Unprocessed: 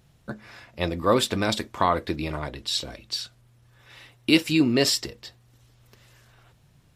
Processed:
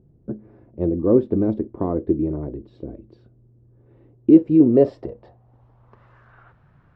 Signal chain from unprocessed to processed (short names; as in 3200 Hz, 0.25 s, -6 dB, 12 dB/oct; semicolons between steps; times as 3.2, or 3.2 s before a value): low-pass sweep 360 Hz -> 1400 Hz, 4.21–6.37; gain +3 dB